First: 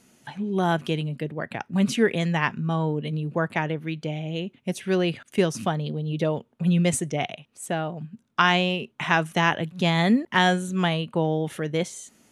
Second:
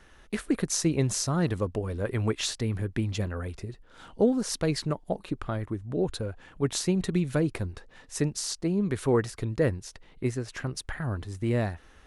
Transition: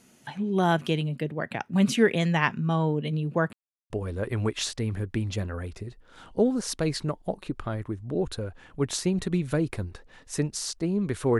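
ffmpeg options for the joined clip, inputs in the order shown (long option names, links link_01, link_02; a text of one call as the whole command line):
ffmpeg -i cue0.wav -i cue1.wav -filter_complex "[0:a]apad=whole_dur=11.39,atrim=end=11.39,asplit=2[link_01][link_02];[link_01]atrim=end=3.53,asetpts=PTS-STARTPTS,afade=type=out:start_time=3.526:duration=0.004:curve=hsin[link_03];[link_02]atrim=start=3.53:end=3.9,asetpts=PTS-STARTPTS,volume=0[link_04];[1:a]atrim=start=1.72:end=9.21,asetpts=PTS-STARTPTS,afade=type=in:duration=0.004:curve=hsin[link_05];[link_03][link_04][link_05]concat=n=3:v=0:a=1" out.wav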